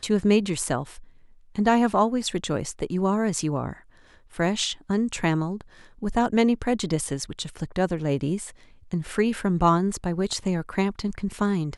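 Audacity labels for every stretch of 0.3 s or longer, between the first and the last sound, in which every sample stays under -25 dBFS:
0.820000	1.580000	silence
3.710000	4.400000	silence
5.610000	6.030000	silence
8.440000	8.930000	silence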